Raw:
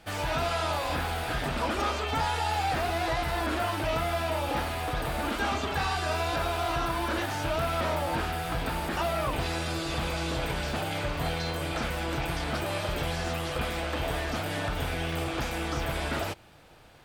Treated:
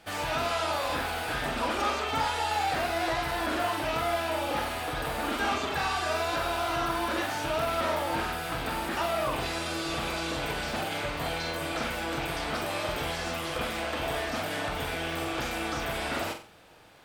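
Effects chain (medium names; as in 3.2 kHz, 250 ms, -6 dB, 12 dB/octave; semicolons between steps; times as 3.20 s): bass shelf 150 Hz -9 dB; on a send: flutter echo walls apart 7.7 m, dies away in 0.39 s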